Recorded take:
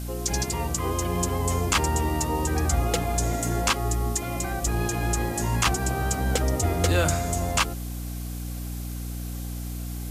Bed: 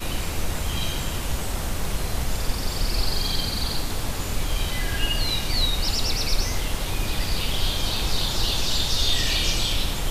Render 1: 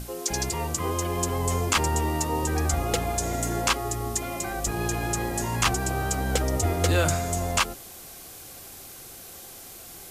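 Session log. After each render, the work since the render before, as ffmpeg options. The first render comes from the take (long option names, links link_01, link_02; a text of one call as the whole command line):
ffmpeg -i in.wav -af "bandreject=frequency=60:width_type=h:width=6,bandreject=frequency=120:width_type=h:width=6,bandreject=frequency=180:width_type=h:width=6,bandreject=frequency=240:width_type=h:width=6,bandreject=frequency=300:width_type=h:width=6" out.wav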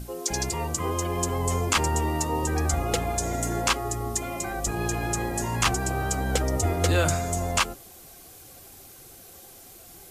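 ffmpeg -i in.wav -af "afftdn=noise_reduction=6:noise_floor=-44" out.wav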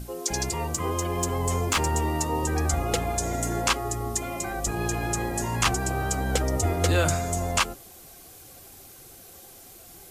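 ffmpeg -i in.wav -filter_complex "[0:a]asettb=1/sr,asplit=3[link_01][link_02][link_03];[link_01]atrim=end=0.414[link_04];[link_02]atrim=start=0.41:end=2.1,asetpts=PTS-STARTPTS,afade=type=in:duration=0.004:curve=qsin,afade=type=out:start_time=1.686:duration=0.004:curve=qsin,asoftclip=type=hard:threshold=-17.5dB[link_05];[link_03]atrim=start=2.096[link_06];[link_04][link_05]acrossfade=duration=0.004:curve1=hsin:curve2=qsin[link_07];[link_07][link_06]acrossfade=duration=0.004:curve1=qsin:curve2=hsin" out.wav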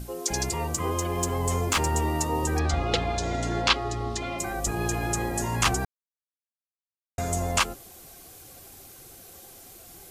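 ffmpeg -i in.wav -filter_complex "[0:a]asettb=1/sr,asplit=3[link_01][link_02][link_03];[link_01]atrim=end=0.994[link_04];[link_02]atrim=start=0.99:end=1.95,asetpts=PTS-STARTPTS,afade=type=in:duration=0.004:curve=qsin,afade=type=out:start_time=0.956:duration=0.004:curve=qsin,aeval=exprs='sgn(val(0))*max(abs(val(0))-0.00237,0)':channel_layout=same[link_05];[link_03]atrim=start=1.946[link_06];[link_04][link_05]acrossfade=duration=0.004:curve1=hsin:curve2=qsin[link_07];[link_07][link_06]acrossfade=duration=0.004:curve1=qsin:curve2=hsin,asettb=1/sr,asplit=3[link_08][link_09][link_10];[link_08]atrim=end=2.594[link_11];[link_09]atrim=start=2.59:end=4.39,asetpts=PTS-STARTPTS,afade=type=in:duration=0.004:curve=qsin,afade=type=out:start_time=1.796:duration=0.004:curve=qsin,lowpass=frequency=4000:width_type=q:width=2.2[link_12];[link_10]atrim=start=4.386[link_13];[link_11][link_12]acrossfade=duration=0.004:curve1=hsin:curve2=qsin[link_14];[link_14][link_13]acrossfade=duration=0.004:curve1=qsin:curve2=hsin,asplit=3[link_15][link_16][link_17];[link_15]atrim=end=5.85,asetpts=PTS-STARTPTS,afade=type=out:start_time=5.846:duration=0.004:curve=hsin[link_18];[link_16]atrim=start=5.85:end=7.18,asetpts=PTS-STARTPTS,volume=0[link_19];[link_17]atrim=start=7.18,asetpts=PTS-STARTPTS,afade=type=in:duration=0.004:curve=hsin[link_20];[link_18][link_19][link_20]concat=n=3:v=0:a=1" out.wav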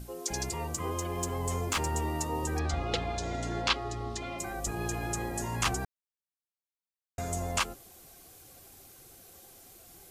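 ffmpeg -i in.wav -af "volume=-6dB" out.wav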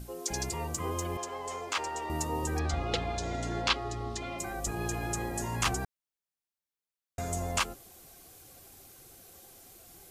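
ffmpeg -i in.wav -filter_complex "[0:a]asettb=1/sr,asplit=3[link_01][link_02][link_03];[link_01]atrim=end=1.174[link_04];[link_02]atrim=start=1.17:end=2.1,asetpts=PTS-STARTPTS,afade=type=in:duration=0.004:curve=qsin,afade=type=out:start_time=0.926:duration=0.004:curve=qsin,acrossover=split=390 6800:gain=0.0891 1 0.178[link_05][link_06][link_07];[link_05][link_06][link_07]amix=inputs=3:normalize=0[link_08];[link_03]atrim=start=2.096[link_09];[link_04][link_08]acrossfade=duration=0.004:curve1=hsin:curve2=qsin[link_10];[link_10][link_09]acrossfade=duration=0.004:curve1=qsin:curve2=hsin" out.wav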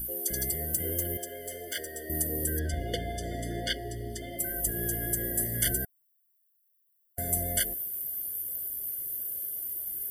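ffmpeg -i in.wav -af "aexciter=amount=12.8:drive=7.6:freq=9700,afftfilt=real='re*eq(mod(floor(b*sr/1024/720),2),0)':imag='im*eq(mod(floor(b*sr/1024/720),2),0)':win_size=1024:overlap=0.75" out.wav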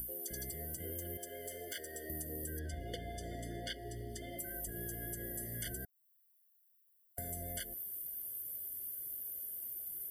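ffmpeg -i in.wav -filter_complex "[0:a]acrossover=split=250|7400[link_01][link_02][link_03];[link_03]alimiter=limit=-22.5dB:level=0:latency=1:release=201[link_04];[link_01][link_02][link_04]amix=inputs=3:normalize=0,acompressor=threshold=-45dB:ratio=2.5" out.wav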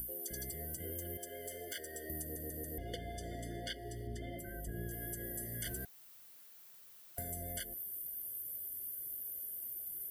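ffmpeg -i in.wav -filter_complex "[0:a]asettb=1/sr,asplit=3[link_01][link_02][link_03];[link_01]atrim=end=4.074[link_04];[link_02]atrim=start=4.07:end=4.91,asetpts=PTS-STARTPTS,afade=type=in:duration=0.004:curve=qsin,afade=type=out:start_time=0.836:duration=0.004:curve=qsin,bass=frequency=250:gain=5,treble=frequency=4000:gain=-9[link_05];[link_03]atrim=start=4.906[link_06];[link_04][link_05]acrossfade=duration=0.004:curve1=hsin:curve2=qsin[link_07];[link_07][link_06]acrossfade=duration=0.004:curve1=qsin:curve2=hsin,asettb=1/sr,asplit=3[link_08][link_09][link_10];[link_08]atrim=end=5.644[link_11];[link_09]atrim=start=5.64:end=7.23,asetpts=PTS-STARTPTS,afade=type=in:duration=0.004:curve=qsin,afade=type=out:start_time=1.586:duration=0.004:curve=qsin,aeval=exprs='val(0)+0.5*0.00224*sgn(val(0))':channel_layout=same[link_12];[link_10]atrim=start=7.226[link_13];[link_11][link_12]acrossfade=duration=0.004:curve1=hsin:curve2=qsin[link_14];[link_14][link_13]acrossfade=duration=0.004:curve1=qsin:curve2=hsin,asplit=5[link_15][link_16][link_17][link_18][link_19];[link_15]atrim=end=2.362[link_20];[link_16]atrim=start=2.218:end=2.362[link_21];[link_17]atrim=start=2.218:end=2.362[link_22];[link_18]atrim=start=2.218:end=2.362[link_23];[link_19]atrim=start=2.778[link_24];[link_20][link_21]acrossfade=duration=0.004:curve1=hsin:curve2=hsin[link_25];[link_25][link_22]acrossfade=duration=0.004:curve1=hsin:curve2=hsin[link_26];[link_26][link_23]acrossfade=duration=0.004:curve1=hsin:curve2=hsin[link_27];[link_27][link_24]acrossfade=duration=0.004:curve1=hsin:curve2=hsin" out.wav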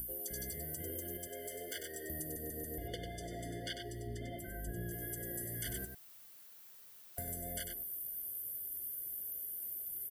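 ffmpeg -i in.wav -af "aecho=1:1:97:0.473" out.wav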